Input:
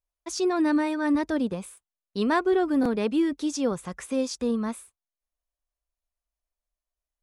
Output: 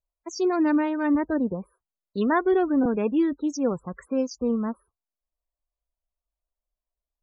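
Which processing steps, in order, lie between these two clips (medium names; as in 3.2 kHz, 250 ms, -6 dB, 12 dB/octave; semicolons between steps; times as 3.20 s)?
local Wiener filter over 15 samples; loudest bins only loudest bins 32; trim +1.5 dB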